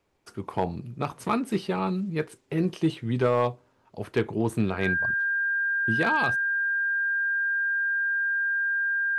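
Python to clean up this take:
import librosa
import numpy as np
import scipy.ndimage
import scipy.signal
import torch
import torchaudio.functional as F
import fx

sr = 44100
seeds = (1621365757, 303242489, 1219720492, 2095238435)

y = fx.fix_declip(x, sr, threshold_db=-14.5)
y = fx.notch(y, sr, hz=1600.0, q=30.0)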